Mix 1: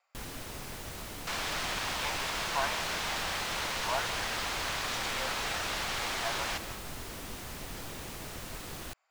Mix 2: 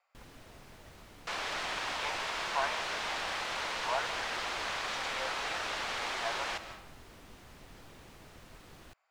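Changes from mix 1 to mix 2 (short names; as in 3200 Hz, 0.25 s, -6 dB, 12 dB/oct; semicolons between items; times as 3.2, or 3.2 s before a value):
first sound -10.5 dB; master: add high shelf 6300 Hz -10.5 dB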